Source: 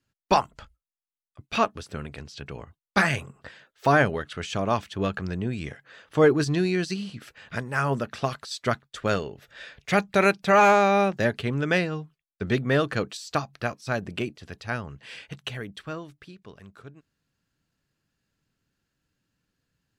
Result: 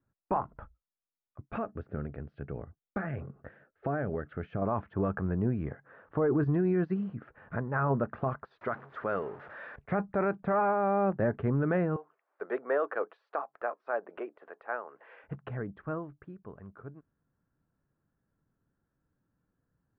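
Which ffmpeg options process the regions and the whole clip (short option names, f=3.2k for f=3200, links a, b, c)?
-filter_complex "[0:a]asettb=1/sr,asplit=3[a][b][c];[a]atrim=end=1.574[d];[b]atrim=start=1.57:end=4.62,asetpts=PTS-STARTPTS,afade=t=in:d=0.004:c=qsin,afade=t=out:st=3.046:d=0.004:c=qsin,equalizer=f=1k:t=o:w=0.5:g=-11.5,acompressor=threshold=-28dB:ratio=5:attack=3.2:release=140:knee=1:detection=peak[e];[c]atrim=start=4.616[f];[d][e]acrossfade=d=0.004:c1=hsin:c2=qsin[g];[g][f]acrossfade=d=0.004:c1=qsin:c2=hsin,asettb=1/sr,asplit=3[h][i][j];[h]atrim=end=8.614[k];[i]atrim=start=8.61:end=9.76,asetpts=PTS-STARTPTS,afade=t=in:d=0.004:c=qsin,afade=t=out:st=1.146:d=0.004:c=qsin,aeval=exprs='val(0)+0.5*0.0158*sgn(val(0))':c=same,highpass=f=500:p=1,aemphasis=mode=production:type=75fm[l];[j]atrim=start=9.756[m];[k][l]acrossfade=d=0.004:c1=hsin:c2=qsin[n];[n][m]acrossfade=d=0.004:c1=qsin:c2=hsin,asettb=1/sr,asplit=3[o][p][q];[o]atrim=end=11.964[r];[p]atrim=start=11.96:end=15.24,asetpts=PTS-STARTPTS,afade=t=in:d=0.004:c=qsin,afade=t=out:st=3.276:d=0.004:c=qsin,highpass=f=440:w=0.5412,highpass=f=440:w=1.3066,acompressor=mode=upward:threshold=-41dB:ratio=2.5:attack=3.2:release=140:knee=2.83:detection=peak[s];[q]atrim=start=15.236[t];[r][s]acrossfade=d=0.004:c1=hsin:c2=qsin[u];[u][t]acrossfade=d=0.004:c1=qsin:c2=hsin,lowpass=f=1.4k:w=0.5412,lowpass=f=1.4k:w=1.3066,alimiter=limit=-20dB:level=0:latency=1:release=25"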